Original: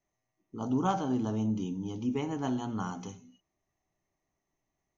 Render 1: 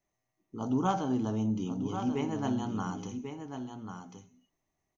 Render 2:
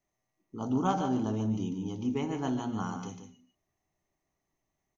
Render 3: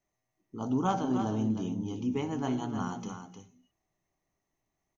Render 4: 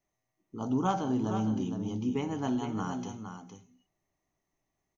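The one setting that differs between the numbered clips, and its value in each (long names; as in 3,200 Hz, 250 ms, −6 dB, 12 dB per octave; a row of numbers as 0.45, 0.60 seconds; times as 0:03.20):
single-tap delay, delay time: 1,091, 146, 308, 462 milliseconds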